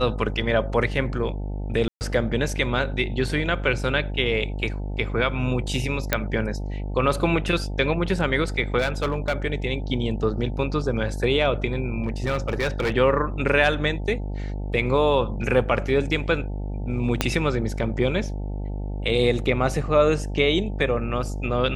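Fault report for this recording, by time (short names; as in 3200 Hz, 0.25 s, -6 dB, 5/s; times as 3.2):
buzz 50 Hz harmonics 18 -29 dBFS
1.88–2.01 gap 0.129 s
6.13 pop -4 dBFS
8.78–9.33 clipped -17.5 dBFS
12.04–12.92 clipped -19 dBFS
17.21 pop -4 dBFS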